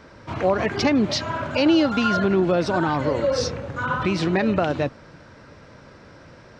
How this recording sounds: noise floor -47 dBFS; spectral tilt -4.5 dB/octave

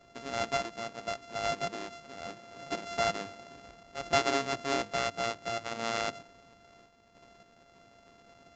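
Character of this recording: a buzz of ramps at a fixed pitch in blocks of 64 samples; random-step tremolo; Vorbis

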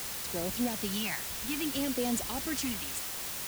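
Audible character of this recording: phasing stages 2, 0.59 Hz, lowest notch 430–1500 Hz; a quantiser's noise floor 6-bit, dither triangular

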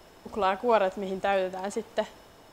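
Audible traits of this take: noise floor -54 dBFS; spectral tilt -3.0 dB/octave

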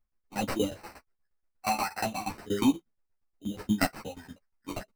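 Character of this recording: phasing stages 2, 0.41 Hz, lowest notch 320–1700 Hz; tremolo saw down 8.4 Hz, depth 95%; aliases and images of a low sample rate 3.4 kHz, jitter 0%; a shimmering, thickened sound

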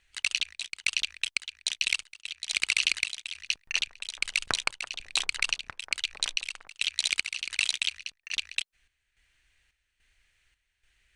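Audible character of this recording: chopped level 1.2 Hz, depth 65%, duty 65%

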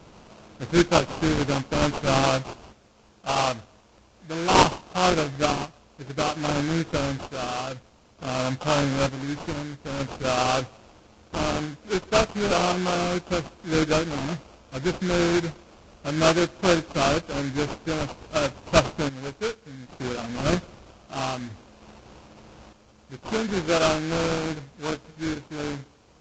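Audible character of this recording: aliases and images of a low sample rate 1.9 kHz, jitter 20%; random-step tremolo 1.1 Hz, depth 75%; a quantiser's noise floor 12-bit, dither triangular; Vorbis

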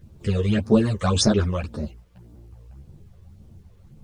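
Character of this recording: phasing stages 12, 1.8 Hz, lowest notch 230–2900 Hz; a quantiser's noise floor 12-bit, dither none; a shimmering, thickened sound

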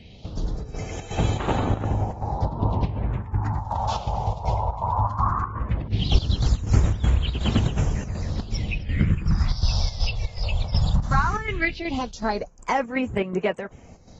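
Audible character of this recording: phasing stages 4, 0.17 Hz, lowest notch 270–5000 Hz; chopped level 2.7 Hz, depth 60%, duty 70%; AAC

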